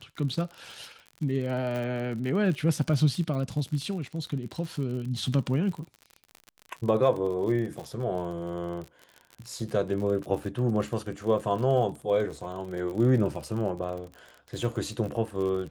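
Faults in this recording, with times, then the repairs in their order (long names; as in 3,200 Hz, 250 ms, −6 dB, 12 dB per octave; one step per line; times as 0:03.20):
surface crackle 47 per second −34 dBFS
0:01.76: click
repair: click removal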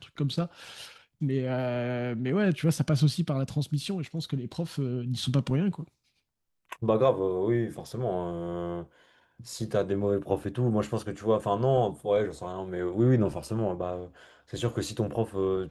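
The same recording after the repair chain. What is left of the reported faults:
none of them is left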